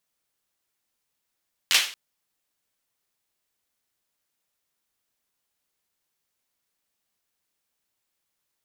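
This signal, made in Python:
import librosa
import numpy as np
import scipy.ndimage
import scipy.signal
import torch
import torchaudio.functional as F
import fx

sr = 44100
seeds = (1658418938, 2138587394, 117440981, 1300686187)

y = fx.drum_clap(sr, seeds[0], length_s=0.23, bursts=4, spacing_ms=11, hz=2900.0, decay_s=0.4)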